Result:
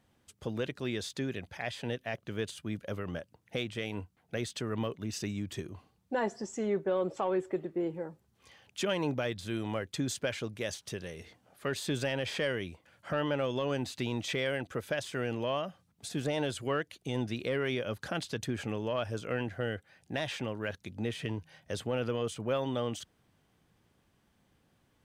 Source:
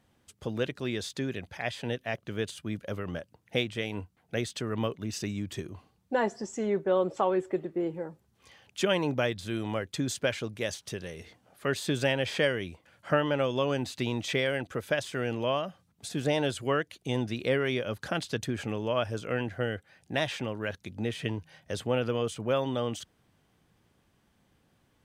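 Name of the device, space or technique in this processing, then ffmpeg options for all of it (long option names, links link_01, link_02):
soft clipper into limiter: -af "asoftclip=type=tanh:threshold=-13.5dB,alimiter=limit=-20dB:level=0:latency=1,volume=-2dB"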